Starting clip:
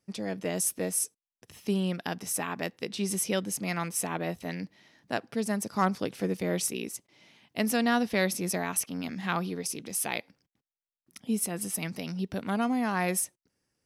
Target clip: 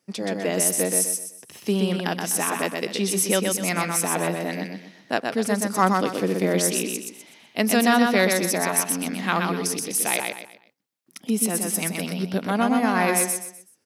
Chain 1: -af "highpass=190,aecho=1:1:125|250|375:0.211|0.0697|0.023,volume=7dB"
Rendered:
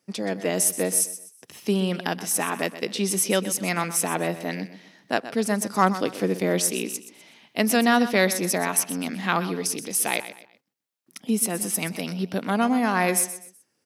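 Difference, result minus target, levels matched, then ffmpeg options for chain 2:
echo-to-direct -9.5 dB
-af "highpass=190,aecho=1:1:125|250|375|500:0.631|0.208|0.0687|0.0227,volume=7dB"

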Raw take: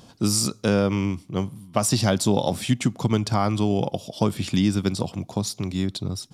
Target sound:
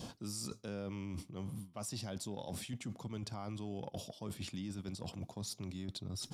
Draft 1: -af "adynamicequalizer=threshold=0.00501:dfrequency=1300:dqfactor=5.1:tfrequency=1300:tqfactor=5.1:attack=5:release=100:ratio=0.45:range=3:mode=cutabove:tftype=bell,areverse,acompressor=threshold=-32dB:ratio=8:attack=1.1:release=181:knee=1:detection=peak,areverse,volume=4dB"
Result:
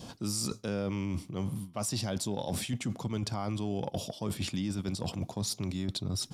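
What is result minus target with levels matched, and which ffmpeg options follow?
compressor: peak gain reduction -9 dB
-af "adynamicequalizer=threshold=0.00501:dfrequency=1300:dqfactor=5.1:tfrequency=1300:tqfactor=5.1:attack=5:release=100:ratio=0.45:range=3:mode=cutabove:tftype=bell,areverse,acompressor=threshold=-42.5dB:ratio=8:attack=1.1:release=181:knee=1:detection=peak,areverse,volume=4dB"

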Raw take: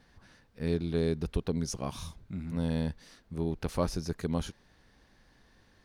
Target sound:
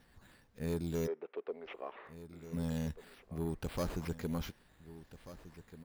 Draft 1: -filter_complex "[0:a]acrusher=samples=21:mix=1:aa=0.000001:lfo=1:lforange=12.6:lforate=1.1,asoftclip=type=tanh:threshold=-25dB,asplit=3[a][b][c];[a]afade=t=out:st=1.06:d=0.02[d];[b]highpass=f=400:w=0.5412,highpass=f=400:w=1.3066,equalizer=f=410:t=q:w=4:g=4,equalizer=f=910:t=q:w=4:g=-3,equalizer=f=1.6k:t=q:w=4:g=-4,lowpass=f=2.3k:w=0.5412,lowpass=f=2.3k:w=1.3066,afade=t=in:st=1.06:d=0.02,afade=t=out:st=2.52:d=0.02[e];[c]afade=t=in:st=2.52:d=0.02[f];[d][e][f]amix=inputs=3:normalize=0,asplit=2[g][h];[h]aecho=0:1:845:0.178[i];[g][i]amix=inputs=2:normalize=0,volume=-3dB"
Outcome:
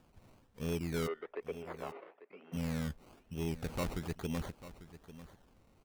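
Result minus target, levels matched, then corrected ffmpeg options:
echo 0.643 s early; decimation with a swept rate: distortion +8 dB
-filter_complex "[0:a]acrusher=samples=6:mix=1:aa=0.000001:lfo=1:lforange=3.6:lforate=1.1,asoftclip=type=tanh:threshold=-25dB,asplit=3[a][b][c];[a]afade=t=out:st=1.06:d=0.02[d];[b]highpass=f=400:w=0.5412,highpass=f=400:w=1.3066,equalizer=f=410:t=q:w=4:g=4,equalizer=f=910:t=q:w=4:g=-3,equalizer=f=1.6k:t=q:w=4:g=-4,lowpass=f=2.3k:w=0.5412,lowpass=f=2.3k:w=1.3066,afade=t=in:st=1.06:d=0.02,afade=t=out:st=2.52:d=0.02[e];[c]afade=t=in:st=2.52:d=0.02[f];[d][e][f]amix=inputs=3:normalize=0,asplit=2[g][h];[h]aecho=0:1:1488:0.178[i];[g][i]amix=inputs=2:normalize=0,volume=-3dB"

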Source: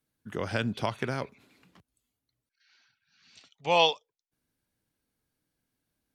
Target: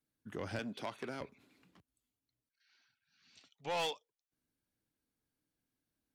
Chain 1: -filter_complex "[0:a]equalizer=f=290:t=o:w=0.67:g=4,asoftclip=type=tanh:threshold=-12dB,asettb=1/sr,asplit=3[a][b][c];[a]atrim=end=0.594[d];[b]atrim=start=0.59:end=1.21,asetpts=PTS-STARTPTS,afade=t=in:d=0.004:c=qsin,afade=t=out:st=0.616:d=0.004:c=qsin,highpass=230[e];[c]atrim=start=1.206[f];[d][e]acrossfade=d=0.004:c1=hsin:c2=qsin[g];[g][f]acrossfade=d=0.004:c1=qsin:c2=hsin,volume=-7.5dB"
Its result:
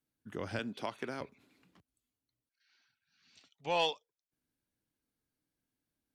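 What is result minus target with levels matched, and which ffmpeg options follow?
soft clip: distortion -12 dB
-filter_complex "[0:a]equalizer=f=290:t=o:w=0.67:g=4,asoftclip=type=tanh:threshold=-23.5dB,asettb=1/sr,asplit=3[a][b][c];[a]atrim=end=0.594[d];[b]atrim=start=0.59:end=1.21,asetpts=PTS-STARTPTS,afade=t=in:d=0.004:c=qsin,afade=t=out:st=0.616:d=0.004:c=qsin,highpass=230[e];[c]atrim=start=1.206[f];[d][e]acrossfade=d=0.004:c1=hsin:c2=qsin[g];[g][f]acrossfade=d=0.004:c1=qsin:c2=hsin,volume=-7.5dB"

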